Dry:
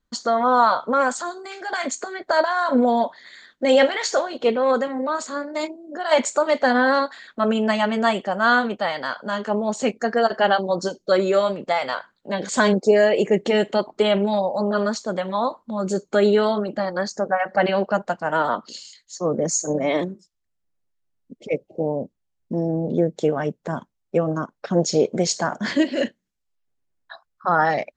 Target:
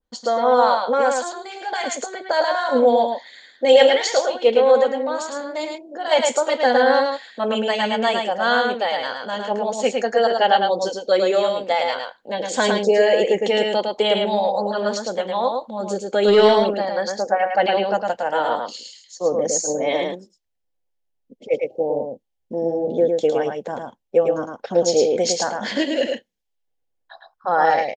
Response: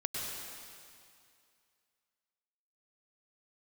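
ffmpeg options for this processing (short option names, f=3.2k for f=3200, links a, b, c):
-filter_complex "[0:a]equalizer=f=160:t=o:w=0.33:g=-10,equalizer=f=500:t=o:w=0.33:g=10,equalizer=f=800:t=o:w=0.33:g=8,equalizer=f=1.25k:t=o:w=0.33:g=-5,equalizer=f=3.15k:t=o:w=0.33:g=4,equalizer=f=8k:t=o:w=0.33:g=-3,asplit=3[a][b][c];[a]afade=t=out:st=16.27:d=0.02[d];[b]acontrast=81,afade=t=in:st=16.27:d=0.02,afade=t=out:st=16.73:d=0.02[e];[c]afade=t=in:st=16.73:d=0.02[f];[d][e][f]amix=inputs=3:normalize=0,asplit=2[g][h];[h]aecho=0:1:108:0.631[i];[g][i]amix=inputs=2:normalize=0,adynamicequalizer=threshold=0.0447:dfrequency=1600:dqfactor=0.7:tfrequency=1600:tqfactor=0.7:attack=5:release=100:ratio=0.375:range=3:mode=boostabove:tftype=highshelf,volume=-4.5dB"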